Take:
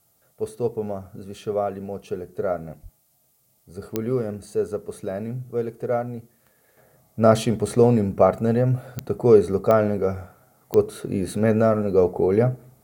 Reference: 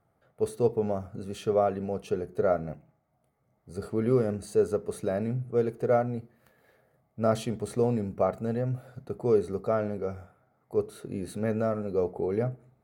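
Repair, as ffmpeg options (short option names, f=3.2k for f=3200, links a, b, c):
-filter_complex "[0:a]adeclick=t=4,asplit=3[a][b][c];[a]afade=t=out:st=2.82:d=0.02[d];[b]highpass=f=140:w=0.5412,highpass=f=140:w=1.3066,afade=t=in:st=2.82:d=0.02,afade=t=out:st=2.94:d=0.02[e];[c]afade=t=in:st=2.94:d=0.02[f];[d][e][f]amix=inputs=3:normalize=0,agate=range=-21dB:threshold=-54dB,asetnsamples=n=441:p=0,asendcmd='6.77 volume volume -9.5dB',volume=0dB"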